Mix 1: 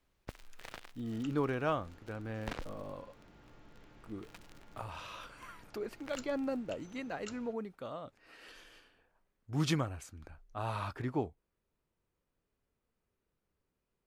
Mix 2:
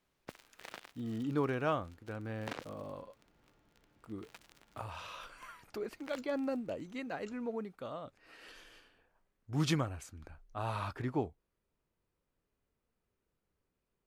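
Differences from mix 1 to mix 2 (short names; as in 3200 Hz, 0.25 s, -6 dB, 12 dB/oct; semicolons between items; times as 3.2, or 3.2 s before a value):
first sound: add HPF 180 Hz; second sound -11.5 dB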